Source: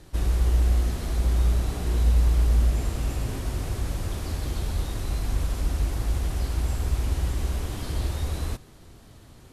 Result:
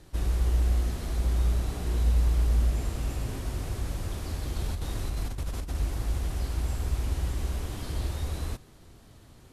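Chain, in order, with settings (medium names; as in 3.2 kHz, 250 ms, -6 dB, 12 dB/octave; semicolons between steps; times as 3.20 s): 4.56–5.75 s: compressor with a negative ratio -26 dBFS, ratio -0.5; trim -3.5 dB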